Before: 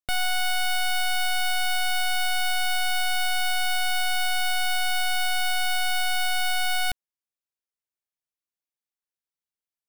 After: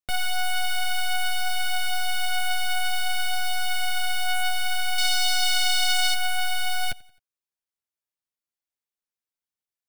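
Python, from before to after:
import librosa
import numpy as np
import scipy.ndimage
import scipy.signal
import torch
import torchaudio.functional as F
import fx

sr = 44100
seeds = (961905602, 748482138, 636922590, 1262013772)

p1 = fx.peak_eq(x, sr, hz=5800.0, db=14.5, octaves=2.5, at=(4.98, 6.14))
p2 = 10.0 ** (-12.5 / 20.0) * np.tanh(p1 / 10.0 ** (-12.5 / 20.0))
p3 = fx.chorus_voices(p2, sr, voices=2, hz=0.57, base_ms=11, depth_ms=2.7, mix_pct=30)
p4 = p3 + fx.echo_feedback(p3, sr, ms=88, feedback_pct=47, wet_db=-23.5, dry=0)
y = F.gain(torch.from_numpy(p4), 1.0).numpy()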